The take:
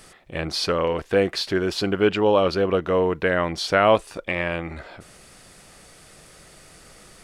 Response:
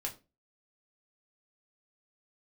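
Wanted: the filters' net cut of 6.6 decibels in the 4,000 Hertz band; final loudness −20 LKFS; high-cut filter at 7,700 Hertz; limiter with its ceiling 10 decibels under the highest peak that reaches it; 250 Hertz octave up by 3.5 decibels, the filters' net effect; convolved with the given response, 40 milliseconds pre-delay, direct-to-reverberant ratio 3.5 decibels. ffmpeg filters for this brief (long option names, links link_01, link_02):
-filter_complex "[0:a]lowpass=7700,equalizer=frequency=250:width_type=o:gain=5,equalizer=frequency=4000:width_type=o:gain=-8,alimiter=limit=-13dB:level=0:latency=1,asplit=2[link_01][link_02];[1:a]atrim=start_sample=2205,adelay=40[link_03];[link_02][link_03]afir=irnorm=-1:irlink=0,volume=-4dB[link_04];[link_01][link_04]amix=inputs=2:normalize=0,volume=3.5dB"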